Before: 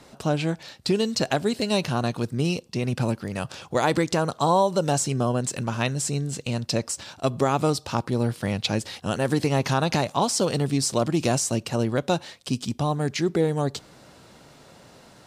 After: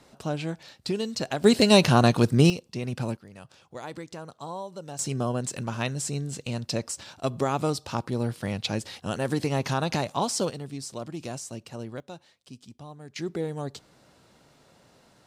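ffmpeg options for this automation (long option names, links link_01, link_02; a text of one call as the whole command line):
ffmpeg -i in.wav -af "asetnsamples=nb_out_samples=441:pad=0,asendcmd='1.44 volume volume 6.5dB;2.5 volume volume -5.5dB;3.17 volume volume -16.5dB;4.99 volume volume -4dB;10.5 volume volume -13dB;12 volume volume -19dB;13.16 volume volume -8.5dB',volume=-6dB" out.wav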